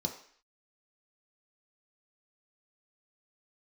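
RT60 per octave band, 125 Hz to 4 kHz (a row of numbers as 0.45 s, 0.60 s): 0.35 s, 0.50 s, 0.50 s, 0.55 s, 0.65 s, 0.60 s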